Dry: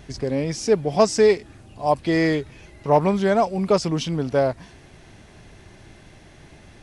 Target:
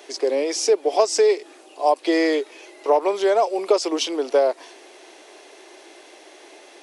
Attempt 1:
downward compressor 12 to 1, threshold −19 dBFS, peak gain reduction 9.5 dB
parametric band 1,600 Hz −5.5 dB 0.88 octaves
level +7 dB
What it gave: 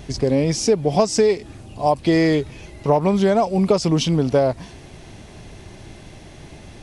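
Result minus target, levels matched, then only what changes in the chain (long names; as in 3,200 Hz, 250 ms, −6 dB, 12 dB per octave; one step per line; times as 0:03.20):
250 Hz band +5.5 dB
add after downward compressor: Butterworth high-pass 330 Hz 48 dB per octave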